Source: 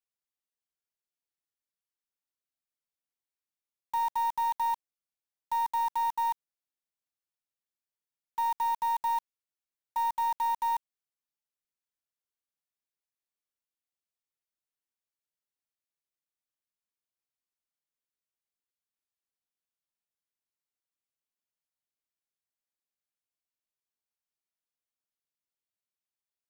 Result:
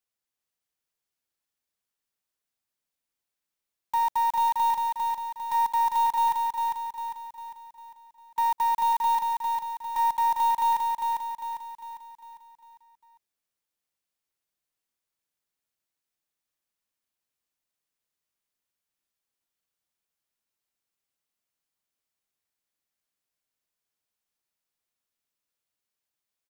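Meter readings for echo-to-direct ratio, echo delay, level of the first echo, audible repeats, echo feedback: −2.5 dB, 401 ms, −3.5 dB, 5, 48%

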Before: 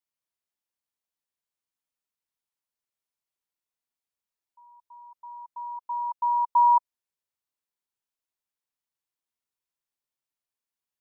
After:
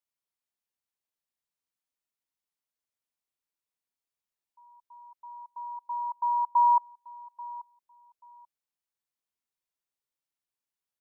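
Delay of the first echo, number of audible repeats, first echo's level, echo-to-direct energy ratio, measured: 835 ms, 2, −19.0 dB, −19.0 dB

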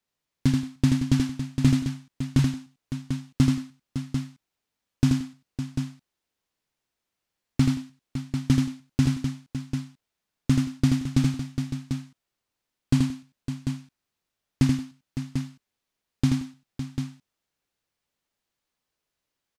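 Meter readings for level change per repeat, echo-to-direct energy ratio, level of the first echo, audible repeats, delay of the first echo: repeats not evenly spaced, −1.5 dB, −4.0 dB, 4, 81 ms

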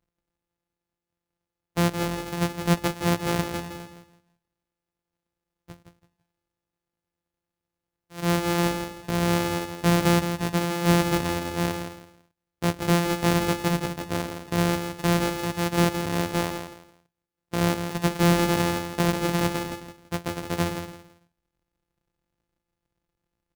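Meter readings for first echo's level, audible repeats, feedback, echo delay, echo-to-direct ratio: −8.0 dB, 3, 25%, 166 ms, −7.5 dB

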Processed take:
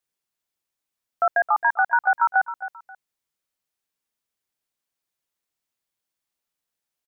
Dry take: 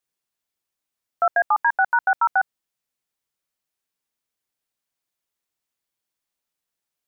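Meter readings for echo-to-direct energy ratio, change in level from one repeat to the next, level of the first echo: −12.5 dB, −11.0 dB, −13.0 dB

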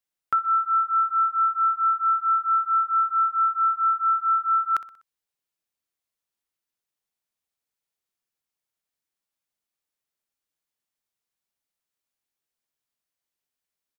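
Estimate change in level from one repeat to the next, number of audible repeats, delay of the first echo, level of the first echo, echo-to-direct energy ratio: −6.5 dB, 3, 62 ms, −16.5 dB, −15.5 dB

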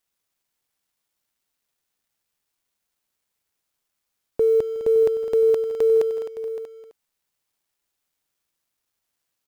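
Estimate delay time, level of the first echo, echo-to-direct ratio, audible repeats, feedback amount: 156 ms, −19.0 dB, −8.5 dB, 4, repeats not evenly spaced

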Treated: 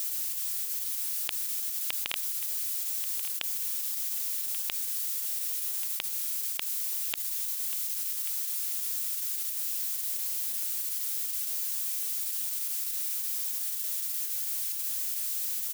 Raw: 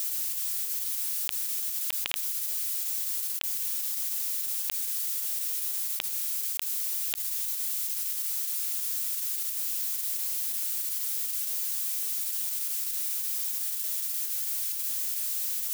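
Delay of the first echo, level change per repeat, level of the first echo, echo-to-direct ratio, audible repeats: 1,135 ms, −10.0 dB, −13.5 dB, −13.0 dB, 2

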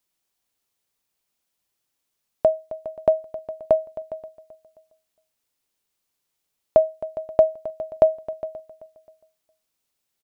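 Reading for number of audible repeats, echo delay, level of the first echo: 3, 265 ms, −16.0 dB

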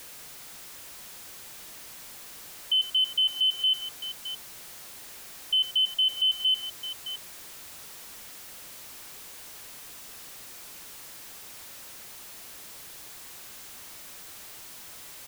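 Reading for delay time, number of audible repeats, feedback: 87 ms, 2, repeats not evenly spaced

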